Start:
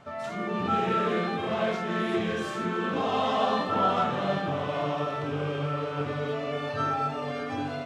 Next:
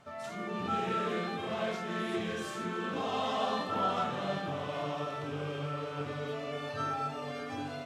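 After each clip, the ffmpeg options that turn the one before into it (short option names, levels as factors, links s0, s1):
-af "aemphasis=mode=production:type=cd,volume=0.473"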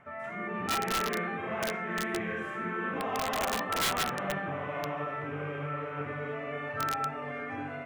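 -af "highshelf=f=3000:t=q:w=3:g=-13.5,aeval=exprs='(mod(14.1*val(0)+1,2)-1)/14.1':c=same"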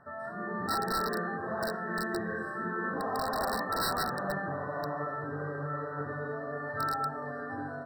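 -af "afftfilt=real='re*eq(mod(floor(b*sr/1024/1900),2),0)':imag='im*eq(mod(floor(b*sr/1024/1900),2),0)':win_size=1024:overlap=0.75"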